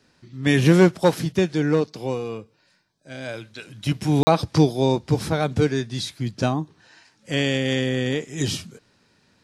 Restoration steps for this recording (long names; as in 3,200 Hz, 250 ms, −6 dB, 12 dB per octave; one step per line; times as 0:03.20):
repair the gap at 0:04.23, 40 ms